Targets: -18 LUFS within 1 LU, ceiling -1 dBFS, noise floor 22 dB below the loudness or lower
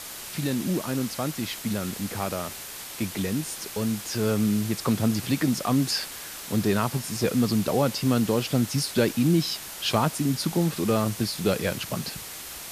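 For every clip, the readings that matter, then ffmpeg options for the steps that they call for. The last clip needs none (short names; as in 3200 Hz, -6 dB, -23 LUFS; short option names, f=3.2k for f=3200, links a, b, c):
noise floor -39 dBFS; noise floor target -49 dBFS; loudness -26.5 LUFS; peak -8.5 dBFS; loudness target -18.0 LUFS
-> -af "afftdn=nr=10:nf=-39"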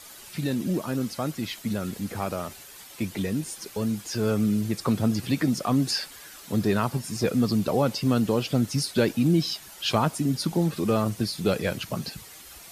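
noise floor -46 dBFS; noise floor target -49 dBFS
-> -af "afftdn=nr=6:nf=-46"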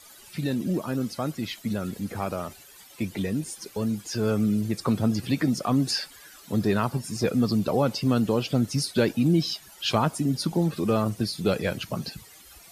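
noise floor -50 dBFS; loudness -26.5 LUFS; peak -8.5 dBFS; loudness target -18.0 LUFS
-> -af "volume=8.5dB,alimiter=limit=-1dB:level=0:latency=1"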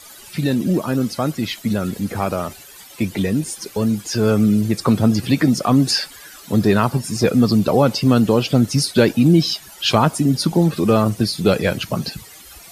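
loudness -18.0 LUFS; peak -1.0 dBFS; noise floor -42 dBFS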